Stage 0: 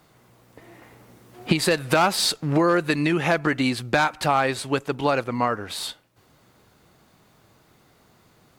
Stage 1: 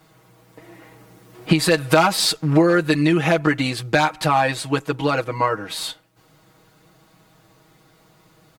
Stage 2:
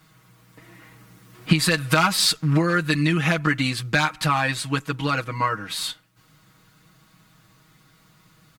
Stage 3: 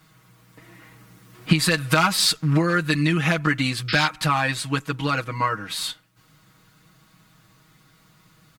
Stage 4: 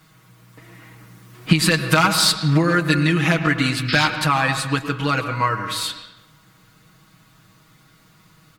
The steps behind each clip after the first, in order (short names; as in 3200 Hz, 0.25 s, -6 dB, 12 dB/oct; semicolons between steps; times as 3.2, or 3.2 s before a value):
comb 6.3 ms, depth 97%
band shelf 530 Hz -9 dB
painted sound noise, 3.88–4.08, 1200–5400 Hz -27 dBFS
reverb RT60 1.1 s, pre-delay 98 ms, DRR 8 dB; gain +2.5 dB